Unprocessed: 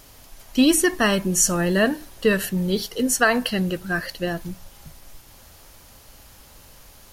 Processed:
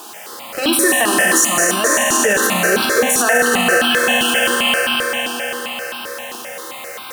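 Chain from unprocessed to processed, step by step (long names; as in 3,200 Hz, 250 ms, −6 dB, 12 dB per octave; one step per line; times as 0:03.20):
adaptive Wiener filter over 9 samples
background noise pink −44 dBFS
0:03.81–0:04.47: voice inversion scrambler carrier 3,300 Hz
in parallel at −4 dB: comparator with hysteresis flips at −30.5 dBFS
on the sum: high-pass filter 410 Hz 12 dB per octave
convolution reverb RT60 5.5 s, pre-delay 4 ms, DRR −3.5 dB
boost into a limiter +13.5 dB
step-sequenced phaser 7.6 Hz 550–1,900 Hz
level −1 dB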